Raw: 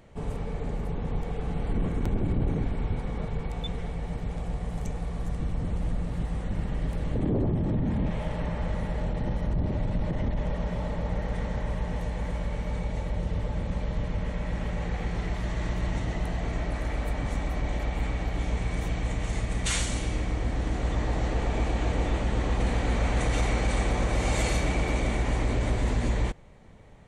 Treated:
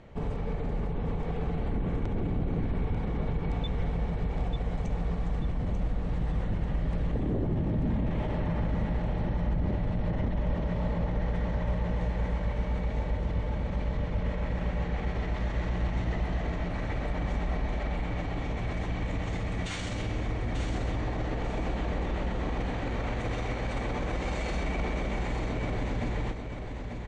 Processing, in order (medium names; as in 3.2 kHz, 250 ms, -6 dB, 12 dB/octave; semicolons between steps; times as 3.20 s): peak limiter -26 dBFS, peak gain reduction 11 dB; distance through air 120 m; feedback delay 891 ms, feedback 33%, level -6.5 dB; trim +3 dB